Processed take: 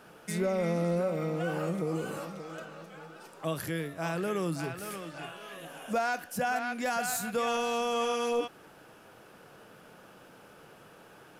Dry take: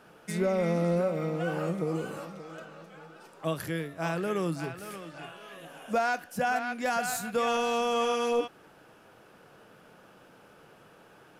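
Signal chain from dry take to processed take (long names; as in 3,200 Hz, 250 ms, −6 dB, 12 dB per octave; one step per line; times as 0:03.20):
high-shelf EQ 6,300 Hz +4.5 dB
in parallel at +1 dB: brickwall limiter −29 dBFS, peak gain reduction 11 dB
on the sum: level −5 dB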